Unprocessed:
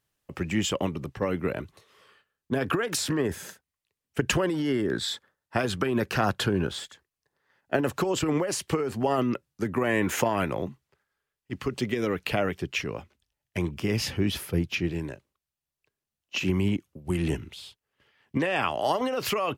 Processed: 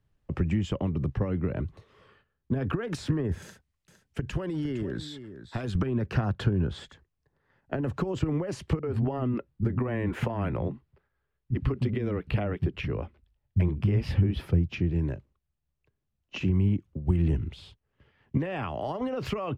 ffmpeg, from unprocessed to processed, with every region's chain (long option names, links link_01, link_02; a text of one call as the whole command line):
ffmpeg -i in.wav -filter_complex "[0:a]asettb=1/sr,asplit=3[link_01][link_02][link_03];[link_01]atrim=end=3.424[link_04];[link_02]atrim=start=3.42:end=5.75,asetpts=PTS-STARTPTS,afade=type=in:duration=0.004:curve=qsin,afade=type=out:start_time=2.326:duration=0.004:curve=qsin,highshelf=frequency=2900:gain=10,acompressor=threshold=-38dB:ratio=2.5:attack=3.2:release=140:knee=1:detection=peak,aecho=1:1:459:0.237,atrim=end_sample=102753[link_05];[link_03]atrim=start=5.746[link_06];[link_04][link_05]acrossfade=duration=0.004:curve1=hsin:curve2=qsin[link_07];[link_07][link_06]acrossfade=duration=0.004:curve1=qsin:curve2=hsin,asettb=1/sr,asplit=3[link_08][link_09][link_10];[link_08]atrim=end=8.794[link_11];[link_09]atrim=start=8.79:end=14.46,asetpts=PTS-STARTPTS,afade=type=in:duration=0.004:curve=qsin,afade=type=out:start_time=5.666:duration=0.004:curve=qsin,equalizer=frequency=6500:width_type=o:width=0.54:gain=-10.5,acrossover=split=210[link_12][link_13];[link_13]adelay=40[link_14];[link_12][link_14]amix=inputs=2:normalize=0,atrim=end_sample=250047[link_15];[link_10]atrim=start=14.456[link_16];[link_11][link_15]acrossfade=duration=0.004:curve1=hsin:curve2=qsin[link_17];[link_17][link_16]acrossfade=duration=0.004:curve1=qsin:curve2=hsin,acompressor=threshold=-31dB:ratio=3,aemphasis=mode=reproduction:type=riaa,acrossover=split=170[link_18][link_19];[link_19]acompressor=threshold=-27dB:ratio=6[link_20];[link_18][link_20]amix=inputs=2:normalize=0" out.wav